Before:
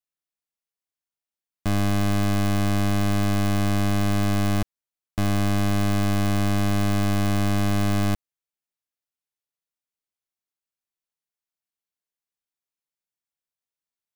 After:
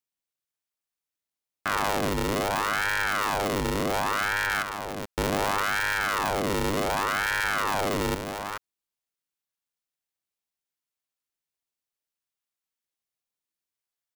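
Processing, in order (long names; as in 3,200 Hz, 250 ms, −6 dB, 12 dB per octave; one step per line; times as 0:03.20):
single-tap delay 427 ms −7.5 dB
hard clipping −19.5 dBFS, distortion −22 dB
low-shelf EQ 190 Hz −11.5 dB
ring modulator whose carrier an LFO sweeps 940 Hz, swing 75%, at 0.68 Hz
level +4 dB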